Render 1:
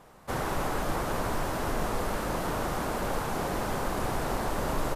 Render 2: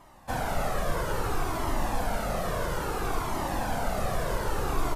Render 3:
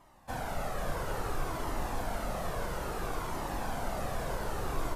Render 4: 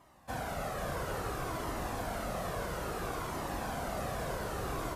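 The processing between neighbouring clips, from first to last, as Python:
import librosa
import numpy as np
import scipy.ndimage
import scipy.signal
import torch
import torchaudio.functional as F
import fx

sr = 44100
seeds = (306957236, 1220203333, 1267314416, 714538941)

y1 = fx.peak_eq(x, sr, hz=700.0, db=3.0, octaves=0.21)
y1 = fx.comb_cascade(y1, sr, direction='falling', hz=0.6)
y1 = F.gain(torch.from_numpy(y1), 4.5).numpy()
y2 = y1 + 10.0 ** (-6.5 / 20.0) * np.pad(y1, (int(510 * sr / 1000.0), 0))[:len(y1)]
y2 = F.gain(torch.from_numpy(y2), -6.5).numpy()
y3 = scipy.signal.sosfilt(scipy.signal.butter(2, 50.0, 'highpass', fs=sr, output='sos'), y2)
y3 = fx.notch(y3, sr, hz=880.0, q=12.0)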